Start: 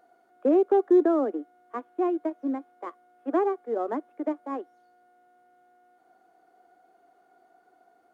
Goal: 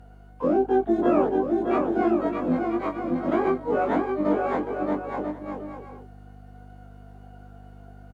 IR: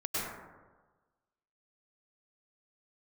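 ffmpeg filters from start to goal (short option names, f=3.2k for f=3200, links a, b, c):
-filter_complex "[0:a]afftfilt=real='re':imag='-im':win_size=2048:overlap=0.75,alimiter=limit=-24dB:level=0:latency=1:release=338,asplit=3[a][b][c];[b]asetrate=29433,aresample=44100,atempo=1.49831,volume=-10dB[d];[c]asetrate=88200,aresample=44100,atempo=0.5,volume=-11dB[e];[a][d][e]amix=inputs=3:normalize=0,aeval=exprs='val(0)+0.00158*(sin(2*PI*50*n/s)+sin(2*PI*2*50*n/s)/2+sin(2*PI*3*50*n/s)/3+sin(2*PI*4*50*n/s)/4+sin(2*PI*5*50*n/s)/5)':c=same,asplit=2[f][g];[g]aecho=0:1:620|992|1215|1349|1429:0.631|0.398|0.251|0.158|0.1[h];[f][h]amix=inputs=2:normalize=0,volume=9dB"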